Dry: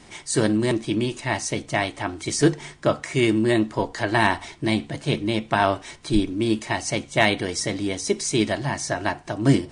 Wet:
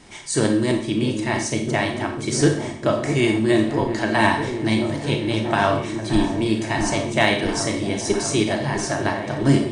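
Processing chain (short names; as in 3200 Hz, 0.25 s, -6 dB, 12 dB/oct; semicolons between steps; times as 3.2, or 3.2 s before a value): on a send: repeats that get brighter 0.652 s, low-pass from 400 Hz, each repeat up 1 oct, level -6 dB; on the sum: Schroeder reverb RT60 0.52 s, combs from 28 ms, DRR 4 dB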